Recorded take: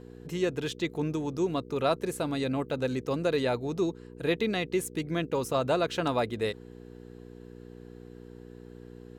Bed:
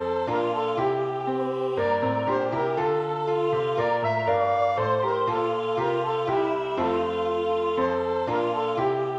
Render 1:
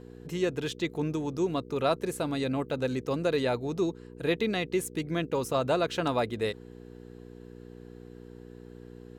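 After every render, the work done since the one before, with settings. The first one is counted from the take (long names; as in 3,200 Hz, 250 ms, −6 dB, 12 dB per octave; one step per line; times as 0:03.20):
no processing that can be heard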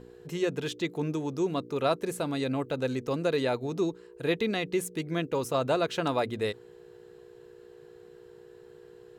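hum removal 60 Hz, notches 5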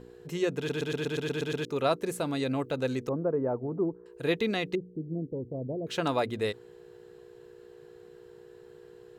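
0:00.57: stutter in place 0.12 s, 9 plays
0:03.09–0:04.06: Bessel low-pass filter 800 Hz, order 6
0:04.75–0:05.87: Gaussian smoothing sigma 19 samples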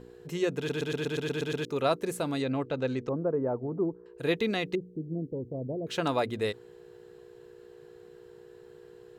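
0:02.42–0:04.18: high-frequency loss of the air 110 metres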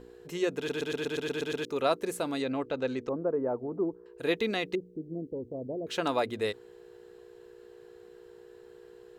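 parametric band 140 Hz −9.5 dB 0.85 octaves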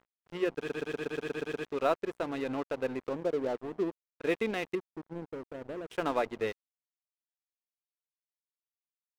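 Savitzky-Golay smoothing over 25 samples
dead-zone distortion −41 dBFS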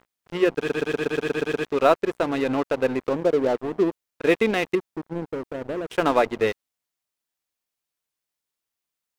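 level +10.5 dB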